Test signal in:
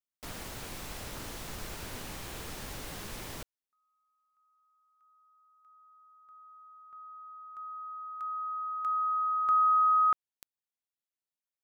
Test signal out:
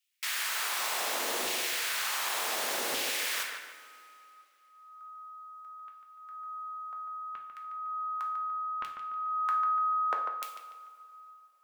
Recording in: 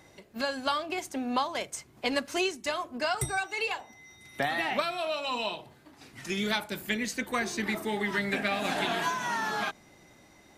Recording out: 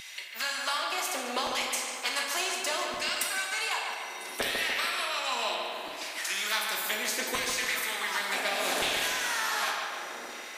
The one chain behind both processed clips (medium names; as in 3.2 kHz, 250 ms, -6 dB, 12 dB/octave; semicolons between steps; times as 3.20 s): high-pass 170 Hz 24 dB/octave; in parallel at -2 dB: compression, threshold -44 dBFS; on the sum: LFO high-pass saw down 0.68 Hz 410–2800 Hz; on a send: filtered feedback delay 146 ms, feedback 41%, low-pass 3.1 kHz, level -7 dB; on the sum: two-slope reverb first 0.51 s, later 2.6 s, from -18 dB, DRR 1.5 dB; spectrum-flattening compressor 2:1; trim -6.5 dB